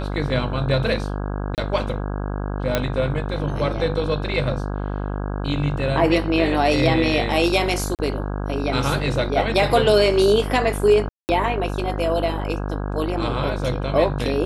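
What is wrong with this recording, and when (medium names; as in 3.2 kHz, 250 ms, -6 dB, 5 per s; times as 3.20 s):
buzz 50 Hz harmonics 33 -26 dBFS
1.55–1.58 s: dropout 28 ms
2.75 s: pop -5 dBFS
7.95–7.99 s: dropout 38 ms
11.09–11.29 s: dropout 199 ms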